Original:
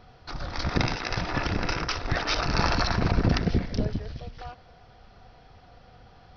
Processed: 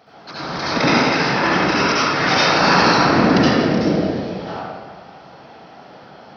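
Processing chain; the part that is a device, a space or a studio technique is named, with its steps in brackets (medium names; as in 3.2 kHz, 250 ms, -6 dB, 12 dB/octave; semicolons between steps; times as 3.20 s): whispering ghost (whisper effect; high-pass 240 Hz 12 dB/octave; reverberation RT60 1.7 s, pre-delay 65 ms, DRR -10.5 dB); trim +3 dB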